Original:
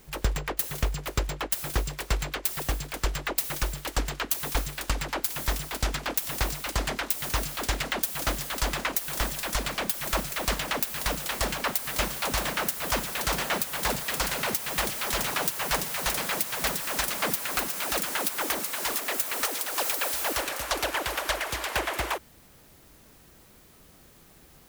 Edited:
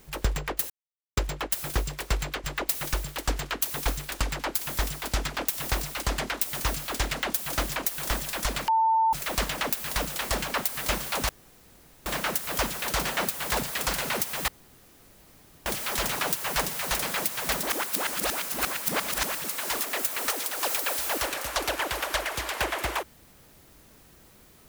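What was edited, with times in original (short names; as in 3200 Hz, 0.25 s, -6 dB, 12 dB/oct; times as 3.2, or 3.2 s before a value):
0.7–1.17 mute
2.44–3.13 cut
8.45–8.86 cut
9.78–10.23 bleep 894 Hz -19 dBFS
12.39 insert room tone 0.77 s
14.81 insert room tone 1.18 s
16.78–18.59 reverse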